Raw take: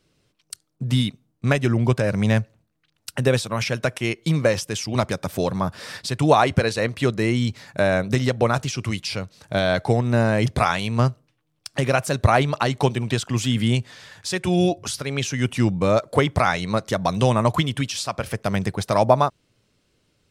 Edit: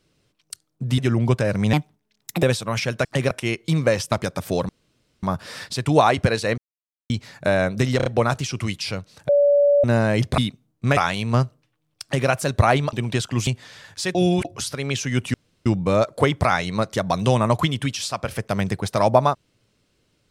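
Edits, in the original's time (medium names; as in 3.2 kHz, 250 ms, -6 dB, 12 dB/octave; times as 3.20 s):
0.98–1.57 s: move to 10.62 s
2.32–3.27 s: speed 136%
4.70–4.99 s: delete
5.56 s: insert room tone 0.54 s
6.91–7.43 s: mute
8.30 s: stutter 0.03 s, 4 plays
9.53–10.08 s: bleep 574 Hz -12.5 dBFS
11.68–11.94 s: copy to 3.89 s
12.58–12.91 s: delete
13.45–13.74 s: delete
14.42–14.72 s: reverse
15.61 s: insert room tone 0.32 s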